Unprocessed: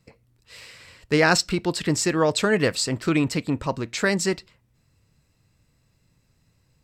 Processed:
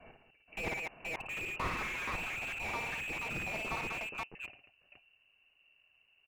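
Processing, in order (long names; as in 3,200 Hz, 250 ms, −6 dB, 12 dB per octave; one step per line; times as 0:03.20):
slices reordered back to front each 124 ms, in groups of 5
voice inversion scrambler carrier 2,600 Hz
multi-tap delay 60/100/116/124/212/518 ms −5/−18.5/−19.5/−13/−11/−6.5 dB
wrong playback speed 44.1 kHz file played as 48 kHz
slew-rate limiting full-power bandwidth 71 Hz
level −8 dB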